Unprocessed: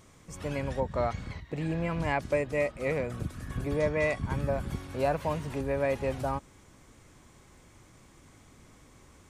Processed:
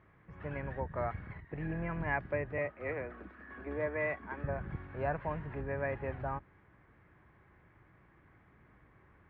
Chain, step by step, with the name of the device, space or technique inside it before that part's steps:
0:02.58–0:04.44: Butterworth high-pass 210 Hz 72 dB per octave
sub-octave bass pedal (sub-octave generator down 2 octaves, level −2 dB; loudspeaker in its box 62–2,200 Hz, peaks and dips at 250 Hz −7 dB, 520 Hz −4 dB, 1,700 Hz +7 dB)
level −5.5 dB

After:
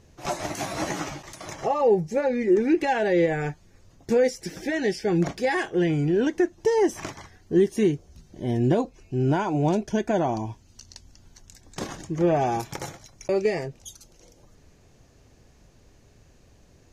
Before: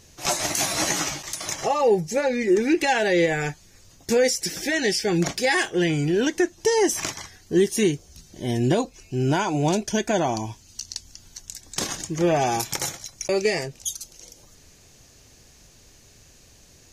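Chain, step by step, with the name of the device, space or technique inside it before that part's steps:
through cloth (high-shelf EQ 2,400 Hz −15.5 dB)

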